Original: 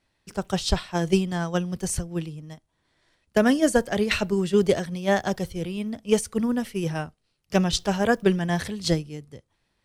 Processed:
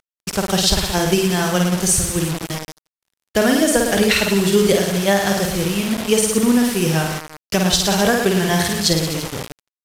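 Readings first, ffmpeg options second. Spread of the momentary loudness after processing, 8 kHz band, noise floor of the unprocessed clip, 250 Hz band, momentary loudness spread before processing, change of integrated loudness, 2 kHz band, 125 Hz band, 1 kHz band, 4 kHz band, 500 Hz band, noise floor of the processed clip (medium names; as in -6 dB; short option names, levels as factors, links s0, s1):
10 LU, +14.5 dB, -74 dBFS, +6.5 dB, 11 LU, +7.5 dB, +8.5 dB, +7.0 dB, +7.5 dB, +12.0 dB, +6.0 dB, under -85 dBFS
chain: -filter_complex "[0:a]highshelf=f=2600:g=8,aecho=1:1:50|107.5|173.6|249.7|337.1:0.631|0.398|0.251|0.158|0.1,acrossover=split=6600[s0][s1];[s0]acompressor=mode=upward:threshold=0.0355:ratio=2.5[s2];[s2][s1]amix=inputs=2:normalize=0,alimiter=limit=0.299:level=0:latency=1:release=268,asplit=2[s3][s4];[s4]acompressor=threshold=0.0158:ratio=6,volume=1.12[s5];[s3][s5]amix=inputs=2:normalize=0,acrusher=bits=4:mix=0:aa=0.000001,agate=range=0.0224:threshold=0.0316:ratio=3:detection=peak,aresample=32000,aresample=44100,volume=1.68"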